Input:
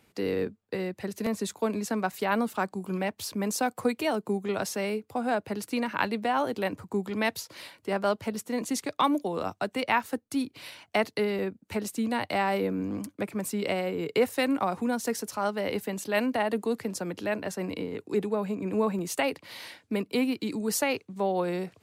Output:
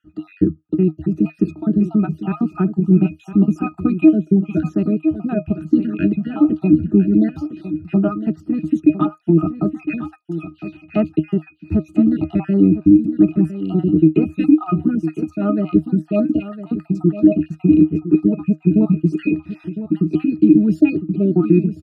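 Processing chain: random spectral dropouts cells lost 49%; in parallel at -5 dB: soft clip -19.5 dBFS, distortion -18 dB; on the sum: resonant low shelf 410 Hz +10 dB, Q 3; octave resonator D#, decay 0.12 s; on a send: echo 1.007 s -12 dB; on the sum: maximiser +15 dB; gain -1 dB

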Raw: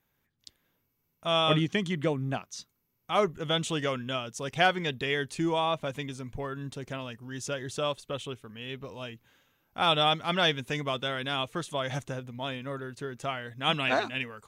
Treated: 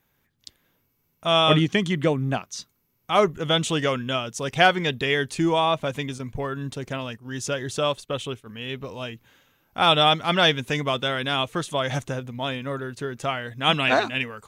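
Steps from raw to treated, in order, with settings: 6.18–8.47 gate -43 dBFS, range -8 dB; gain +6.5 dB

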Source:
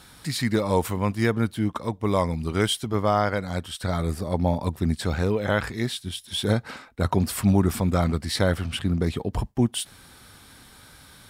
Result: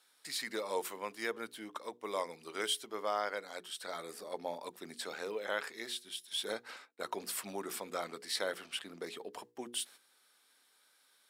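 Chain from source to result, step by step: gate -44 dBFS, range -10 dB; ladder high-pass 380 Hz, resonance 40%; bell 550 Hz -10 dB 2.1 oct; notches 60/120/180/240/300/360/420/480 Hz; gain +1 dB

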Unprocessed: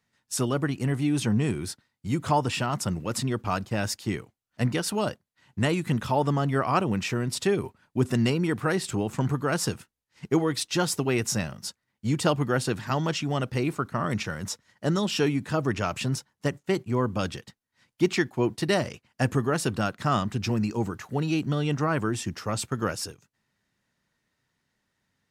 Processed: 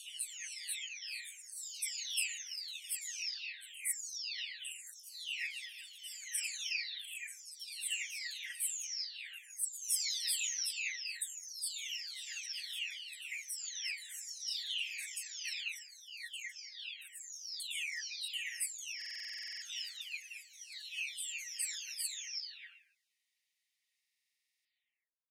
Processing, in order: spectral delay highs early, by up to 0.979 s; steep high-pass 2000 Hz 72 dB/oct; stuck buffer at 18.97/24, samples 2048, times 13

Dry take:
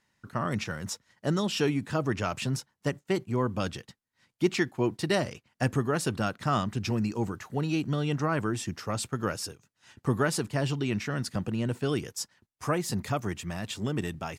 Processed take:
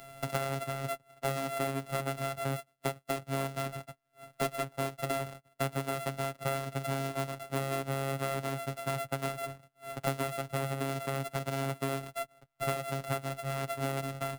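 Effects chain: sample sorter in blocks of 64 samples; robotiser 136 Hz; three-band squash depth 100%; gain -4.5 dB

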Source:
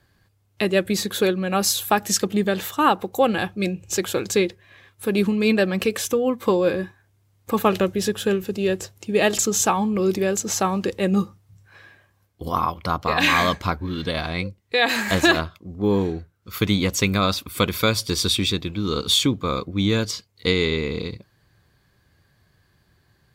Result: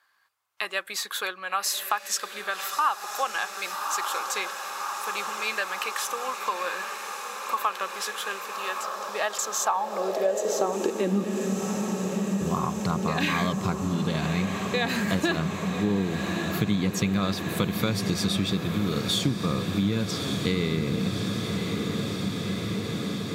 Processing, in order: low shelf 120 Hz +10.5 dB; diffused feedback echo 1.163 s, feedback 79%, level -9.5 dB; high-pass sweep 1100 Hz -> 150 Hz, 9.58–11.76; 8.83–10.73 fifteen-band EQ 160 Hz +6 dB, 630 Hz +6 dB, 2500 Hz -6 dB, 10000 Hz -5 dB; compressor 2.5:1, threshold -20 dBFS, peak gain reduction 9 dB; gain -4 dB

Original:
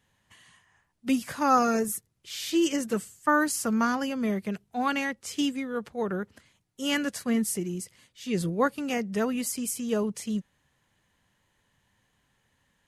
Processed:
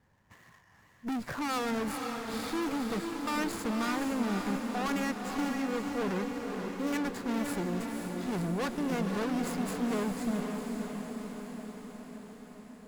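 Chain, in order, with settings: median filter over 15 samples; tube stage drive 37 dB, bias 0.45; diffused feedback echo 0.513 s, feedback 66%, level -4.5 dB; gain +6 dB

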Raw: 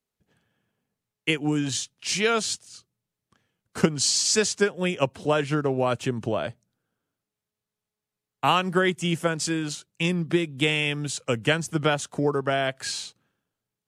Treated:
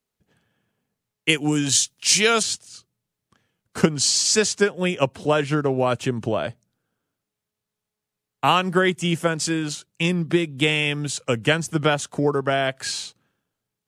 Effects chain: 1.29–2.43 high shelf 4100 Hz +11.5 dB; gain +3 dB

